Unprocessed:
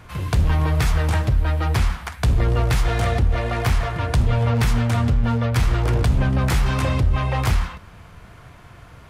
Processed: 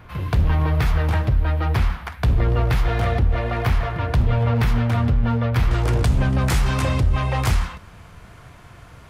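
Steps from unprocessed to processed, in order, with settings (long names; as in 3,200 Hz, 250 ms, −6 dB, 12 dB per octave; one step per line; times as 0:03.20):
parametric band 7,900 Hz −12 dB 1.3 octaves, from 0:05.71 +2.5 dB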